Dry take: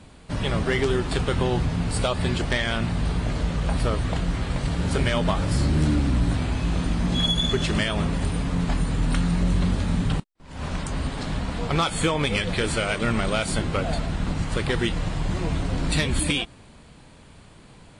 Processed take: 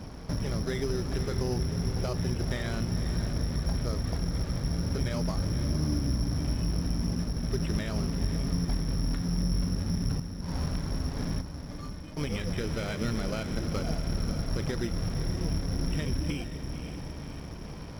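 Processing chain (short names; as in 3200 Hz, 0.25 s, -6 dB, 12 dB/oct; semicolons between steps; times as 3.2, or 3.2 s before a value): dynamic EQ 910 Hz, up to -5 dB, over -41 dBFS, Q 0.9; compressor 3:1, threshold -38 dBFS, peak gain reduction 15 dB; 11.41–12.17 metallic resonator 290 Hz, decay 0.28 s, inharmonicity 0.002; diffused feedback echo 0.523 s, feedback 62%, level -8.5 dB; careless resampling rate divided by 8×, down filtered, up zero stuff; tape spacing loss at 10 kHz 35 dB; running maximum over 3 samples; gain +7 dB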